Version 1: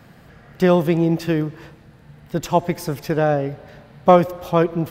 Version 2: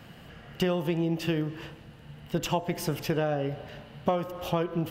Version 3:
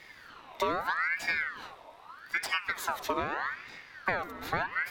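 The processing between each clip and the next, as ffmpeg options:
ffmpeg -i in.wav -af "equalizer=frequency=2900:width=6.7:gain=12.5,bandreject=frequency=63.18:width_type=h:width=4,bandreject=frequency=126.36:width_type=h:width=4,bandreject=frequency=189.54:width_type=h:width=4,bandreject=frequency=252.72:width_type=h:width=4,bandreject=frequency=315.9:width_type=h:width=4,bandreject=frequency=379.08:width_type=h:width=4,bandreject=frequency=442.26:width_type=h:width=4,bandreject=frequency=505.44:width_type=h:width=4,bandreject=frequency=568.62:width_type=h:width=4,bandreject=frequency=631.8:width_type=h:width=4,bandreject=frequency=694.98:width_type=h:width=4,bandreject=frequency=758.16:width_type=h:width=4,bandreject=frequency=821.34:width_type=h:width=4,bandreject=frequency=884.52:width_type=h:width=4,bandreject=frequency=947.7:width_type=h:width=4,bandreject=frequency=1010.88:width_type=h:width=4,bandreject=frequency=1074.06:width_type=h:width=4,bandreject=frequency=1137.24:width_type=h:width=4,bandreject=frequency=1200.42:width_type=h:width=4,bandreject=frequency=1263.6:width_type=h:width=4,bandreject=frequency=1326.78:width_type=h:width=4,bandreject=frequency=1389.96:width_type=h:width=4,bandreject=frequency=1453.14:width_type=h:width=4,bandreject=frequency=1516.32:width_type=h:width=4,bandreject=frequency=1579.5:width_type=h:width=4,bandreject=frequency=1642.68:width_type=h:width=4,bandreject=frequency=1705.86:width_type=h:width=4,bandreject=frequency=1769.04:width_type=h:width=4,bandreject=frequency=1832.22:width_type=h:width=4,bandreject=frequency=1895.4:width_type=h:width=4,bandreject=frequency=1958.58:width_type=h:width=4,bandreject=frequency=2021.76:width_type=h:width=4,acompressor=threshold=-22dB:ratio=8,volume=-1.5dB" out.wav
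ffmpeg -i in.wav -af "equalizer=frequency=620:width=6.9:gain=-11.5,aeval=exprs='val(0)*sin(2*PI*1400*n/s+1400*0.45/0.8*sin(2*PI*0.8*n/s))':channel_layout=same" out.wav

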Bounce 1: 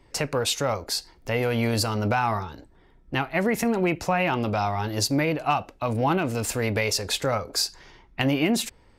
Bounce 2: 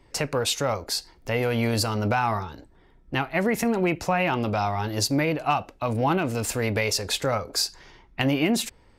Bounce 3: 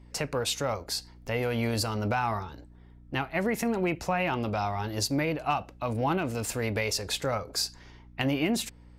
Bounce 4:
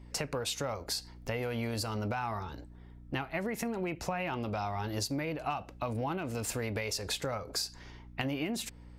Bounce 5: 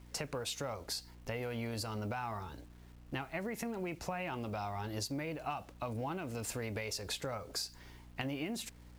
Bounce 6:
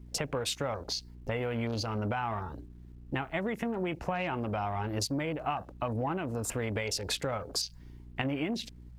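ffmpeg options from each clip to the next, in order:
ffmpeg -i in.wav -af anull out.wav
ffmpeg -i in.wav -af "aeval=exprs='val(0)+0.00501*(sin(2*PI*60*n/s)+sin(2*PI*2*60*n/s)/2+sin(2*PI*3*60*n/s)/3+sin(2*PI*4*60*n/s)/4+sin(2*PI*5*60*n/s)/5)':channel_layout=same,volume=-4.5dB" out.wav
ffmpeg -i in.wav -af "acompressor=threshold=-32dB:ratio=6,volume=1dB" out.wav
ffmpeg -i in.wav -af "acrusher=bits=9:mix=0:aa=0.000001,volume=-4.5dB" out.wav
ffmpeg -i in.wav -af "afwtdn=0.00355,volume=6.5dB" out.wav

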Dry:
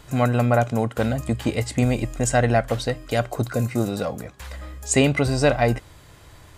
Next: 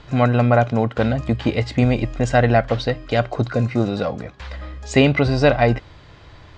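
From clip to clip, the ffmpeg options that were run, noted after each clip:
ffmpeg -i in.wav -af "lowpass=frequency=4900:width=0.5412,lowpass=frequency=4900:width=1.3066,volume=3.5dB" out.wav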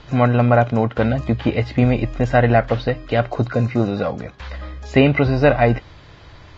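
ffmpeg -i in.wav -filter_complex "[0:a]acrossover=split=3300[link_01][link_02];[link_02]acompressor=threshold=-48dB:ratio=4:attack=1:release=60[link_03];[link_01][link_03]amix=inputs=2:normalize=0,volume=1dB" -ar 16000 -c:a libvorbis -b:a 32k out.ogg

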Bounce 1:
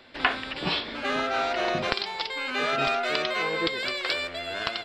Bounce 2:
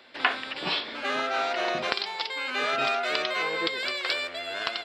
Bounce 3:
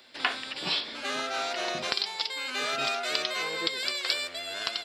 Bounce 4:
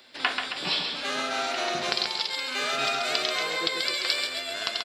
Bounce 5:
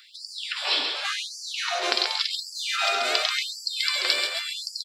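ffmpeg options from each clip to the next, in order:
ffmpeg -i in.wav -af "highpass=frequency=400:poles=1" out.wav
ffmpeg -i in.wav -af "bass=frequency=250:gain=4,treble=frequency=4000:gain=14,volume=-5dB" out.wav
ffmpeg -i in.wav -af "aecho=1:1:135|270|405|540|675|810:0.531|0.25|0.117|0.0551|0.0259|0.0122,volume=1.5dB" out.wav
ffmpeg -i in.wav -af "afftfilt=real='re*gte(b*sr/1024,250*pow(4500/250,0.5+0.5*sin(2*PI*0.9*pts/sr)))':imag='im*gte(b*sr/1024,250*pow(4500/250,0.5+0.5*sin(2*PI*0.9*pts/sr)))':win_size=1024:overlap=0.75,volume=3dB" out.wav

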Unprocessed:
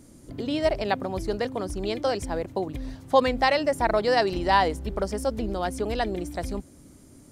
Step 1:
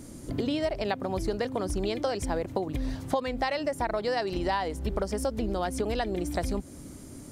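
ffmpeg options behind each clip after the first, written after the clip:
ffmpeg -i in.wav -af "acompressor=threshold=-32dB:ratio=10,volume=6.5dB" out.wav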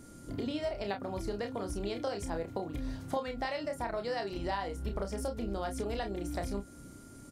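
ffmpeg -i in.wav -af "aeval=exprs='val(0)+0.00158*sin(2*PI*1400*n/s)':channel_layout=same,aecho=1:1:30|47:0.473|0.158,volume=-7.5dB" out.wav

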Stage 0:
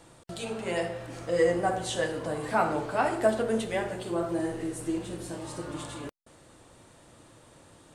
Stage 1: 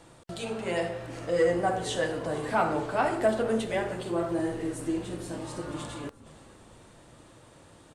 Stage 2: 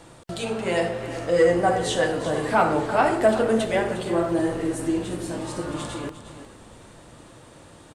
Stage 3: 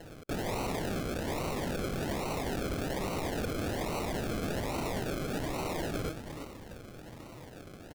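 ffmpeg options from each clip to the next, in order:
ffmpeg -i in.wav -filter_complex "[0:a]highshelf=frequency=7100:gain=-4.5,asplit=6[link_01][link_02][link_03][link_04][link_05][link_06];[link_02]adelay=461,afreqshift=-57,volume=-19dB[link_07];[link_03]adelay=922,afreqshift=-114,volume=-24dB[link_08];[link_04]adelay=1383,afreqshift=-171,volume=-29.1dB[link_09];[link_05]adelay=1844,afreqshift=-228,volume=-34.1dB[link_10];[link_06]adelay=2305,afreqshift=-285,volume=-39.1dB[link_11];[link_01][link_07][link_08][link_09][link_10][link_11]amix=inputs=6:normalize=0,asoftclip=type=tanh:threshold=-15dB,volume=1dB" out.wav
ffmpeg -i in.wav -af "aecho=1:1:356:0.237,volume=6dB" out.wav
ffmpeg -i in.wav -af "aresample=16000,aeval=exprs='(mod(8.91*val(0)+1,2)-1)/8.91':channel_layout=same,aresample=44100,acrusher=samples=37:mix=1:aa=0.000001:lfo=1:lforange=22.2:lforate=1.2,aeval=exprs='(mod(28.2*val(0)+1,2)-1)/28.2':channel_layout=same" out.wav

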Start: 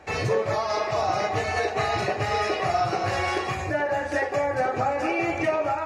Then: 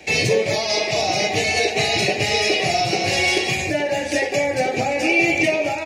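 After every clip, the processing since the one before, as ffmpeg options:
ffmpeg -i in.wav -filter_complex "[0:a]acrossover=split=220|1400|2300[link_01][link_02][link_03][link_04];[link_03]alimiter=level_in=12dB:limit=-24dB:level=0:latency=1,volume=-12dB[link_05];[link_01][link_02][link_05][link_04]amix=inputs=4:normalize=0,firequalizer=gain_entry='entry(100,0);entry(160,9);entry(770,2);entry(1200,-11);entry(2200,15)':delay=0.05:min_phase=1" out.wav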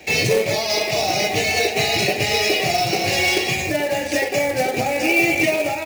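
ffmpeg -i in.wav -af "acrusher=bits=3:mode=log:mix=0:aa=0.000001" out.wav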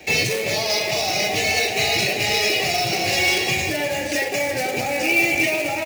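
ffmpeg -i in.wav -filter_complex "[0:a]acrossover=split=1300[link_01][link_02];[link_01]alimiter=limit=-19dB:level=0:latency=1[link_03];[link_03][link_02]amix=inputs=2:normalize=0,aecho=1:1:348:0.282" out.wav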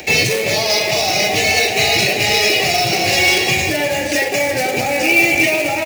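ffmpeg -i in.wav -af "acompressor=mode=upward:threshold=-36dB:ratio=2.5,volume=5.5dB" out.wav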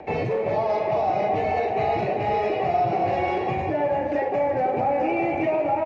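ffmpeg -i in.wav -af "lowpass=frequency=950:width_type=q:width=2,volume=-6.5dB" out.wav

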